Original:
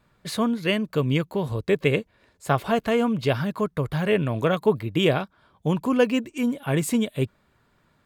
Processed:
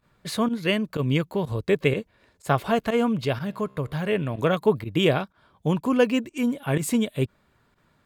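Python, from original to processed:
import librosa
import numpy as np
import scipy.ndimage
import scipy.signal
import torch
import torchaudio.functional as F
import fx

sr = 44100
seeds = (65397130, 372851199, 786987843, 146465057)

y = fx.volume_shaper(x, sr, bpm=124, per_beat=1, depth_db=-16, release_ms=64.0, shape='fast start')
y = fx.comb_fb(y, sr, f0_hz=66.0, decay_s=1.7, harmonics='all', damping=0.0, mix_pct=30, at=(3.25, 4.39))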